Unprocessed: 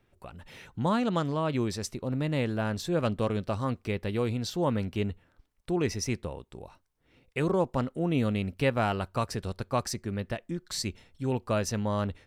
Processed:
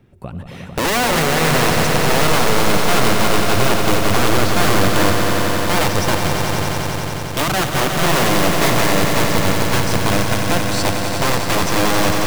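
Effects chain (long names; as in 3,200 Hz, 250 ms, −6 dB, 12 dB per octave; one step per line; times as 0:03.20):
parametric band 160 Hz +12.5 dB 2.8 octaves
in parallel at −1 dB: downward compressor 12 to 1, threshold −28 dBFS, peak gain reduction 17 dB
on the sum: wrap-around overflow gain 15 dB
echo that builds up and dies away 90 ms, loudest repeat 5, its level −8 dB
level +2 dB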